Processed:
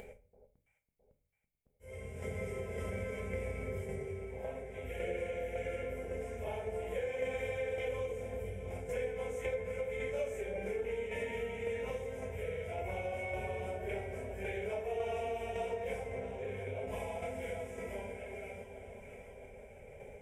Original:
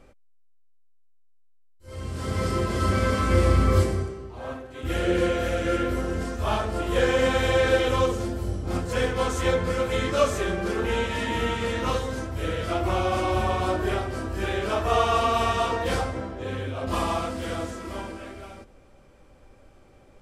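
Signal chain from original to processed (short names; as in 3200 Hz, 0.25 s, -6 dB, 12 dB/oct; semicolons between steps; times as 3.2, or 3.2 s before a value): low shelf 160 Hz +6 dB; fixed phaser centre 1200 Hz, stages 6; small resonant body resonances 430/2200 Hz, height 17 dB, ringing for 30 ms; tremolo saw down 1.8 Hz, depth 55%; echo with dull and thin repeats by turns 0.331 s, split 1000 Hz, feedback 62%, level -12.5 dB; upward compressor, threshold -32 dBFS; on a send at -8.5 dB: tone controls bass +1 dB, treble +12 dB + reverb RT60 0.45 s, pre-delay 5 ms; on the sum: compressor 3:1, threshold -30 dBFS, peak gain reduction 13.5 dB; HPF 92 Hz 6 dB/oct; gain -7 dB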